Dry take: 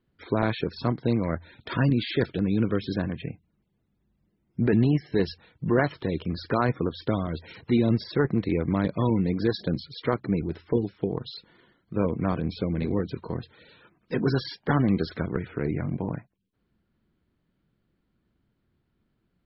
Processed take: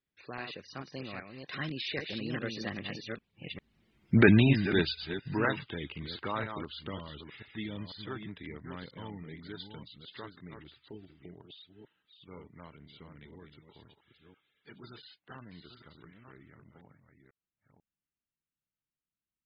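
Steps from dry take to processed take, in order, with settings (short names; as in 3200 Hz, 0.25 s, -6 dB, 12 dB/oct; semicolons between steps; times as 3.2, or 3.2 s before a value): reverse delay 0.446 s, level -6.5 dB; Doppler pass-by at 4.06, 37 m/s, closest 11 m; bell 2800 Hz +14.5 dB 2.5 oct; gain +2 dB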